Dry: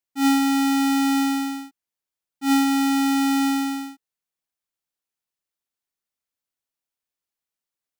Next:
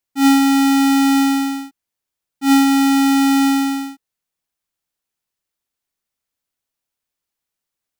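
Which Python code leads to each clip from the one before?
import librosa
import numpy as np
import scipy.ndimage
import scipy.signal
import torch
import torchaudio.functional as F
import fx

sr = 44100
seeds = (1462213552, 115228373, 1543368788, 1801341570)

y = fx.low_shelf(x, sr, hz=150.0, db=4.5)
y = y * 10.0 ** (5.5 / 20.0)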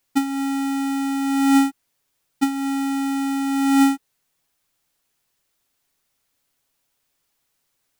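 y = x + 0.32 * np.pad(x, (int(7.2 * sr / 1000.0), 0))[:len(x)]
y = fx.over_compress(y, sr, threshold_db=-22.0, ratio=-1.0)
y = y * 10.0 ** (1.0 / 20.0)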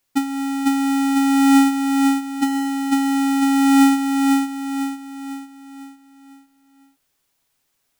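y = fx.echo_feedback(x, sr, ms=500, feedback_pct=44, wet_db=-3.0)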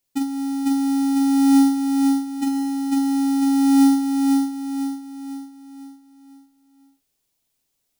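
y = fx.peak_eq(x, sr, hz=1400.0, db=-8.5, octaves=1.8)
y = fx.doubler(y, sr, ms=44.0, db=-4.5)
y = y * 10.0 ** (-4.0 / 20.0)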